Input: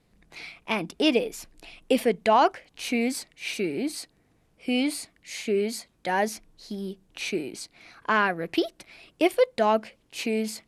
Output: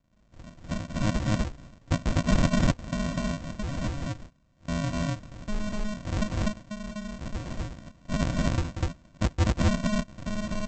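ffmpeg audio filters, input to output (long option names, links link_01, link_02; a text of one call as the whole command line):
ffmpeg -i in.wav -af "aresample=16000,acrusher=samples=38:mix=1:aa=0.000001,aresample=44100,aecho=1:1:186.6|247.8:0.355|1,volume=-4dB" out.wav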